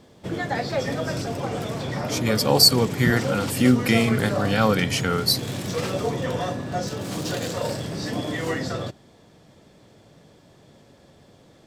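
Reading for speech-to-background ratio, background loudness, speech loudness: 7.5 dB, -28.0 LUFS, -20.5 LUFS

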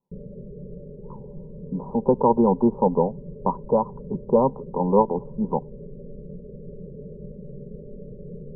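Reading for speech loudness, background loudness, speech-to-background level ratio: -23.0 LUFS, -40.5 LUFS, 17.5 dB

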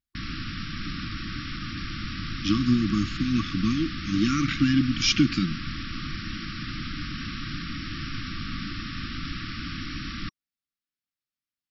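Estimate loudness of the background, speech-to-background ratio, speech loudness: -34.0 LUFS, 9.0 dB, -25.0 LUFS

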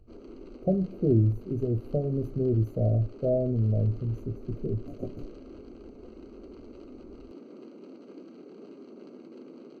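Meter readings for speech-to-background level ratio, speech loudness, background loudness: 19.5 dB, -28.0 LUFS, -47.5 LUFS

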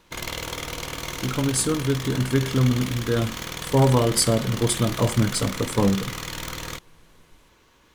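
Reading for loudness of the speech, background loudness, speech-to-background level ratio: -23.0 LUFS, -32.0 LUFS, 9.0 dB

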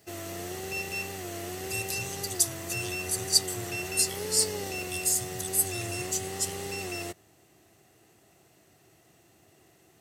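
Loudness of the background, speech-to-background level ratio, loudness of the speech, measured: -34.5 LUFS, 5.5 dB, -29.0 LUFS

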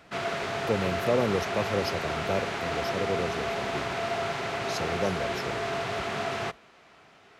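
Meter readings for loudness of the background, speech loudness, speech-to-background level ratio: -31.0 LUFS, -32.5 LUFS, -1.5 dB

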